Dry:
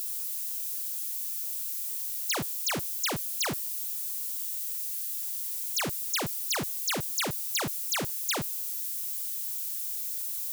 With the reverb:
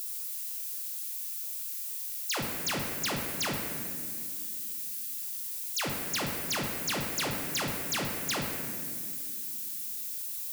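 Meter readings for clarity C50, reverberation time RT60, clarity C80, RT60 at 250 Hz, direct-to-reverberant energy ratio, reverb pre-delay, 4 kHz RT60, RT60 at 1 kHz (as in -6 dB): 2.0 dB, 2.2 s, 3.5 dB, 4.0 s, -0.5 dB, 4 ms, 1.5 s, 1.8 s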